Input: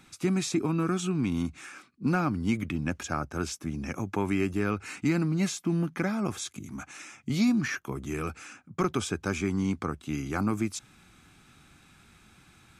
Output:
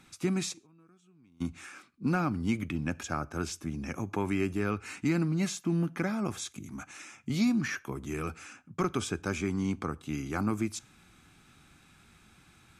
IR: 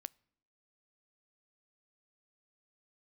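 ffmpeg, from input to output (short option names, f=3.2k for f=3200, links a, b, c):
-filter_complex "[0:a]asplit=3[a][b][c];[a]afade=t=out:st=0.52:d=0.02[d];[b]agate=range=-31dB:threshold=-20dB:ratio=16:detection=peak,afade=t=in:st=0.52:d=0.02,afade=t=out:st=1.4:d=0.02[e];[c]afade=t=in:st=1.4:d=0.02[f];[d][e][f]amix=inputs=3:normalize=0[g];[1:a]atrim=start_sample=2205,atrim=end_sample=3969,asetrate=26901,aresample=44100[h];[g][h]afir=irnorm=-1:irlink=0"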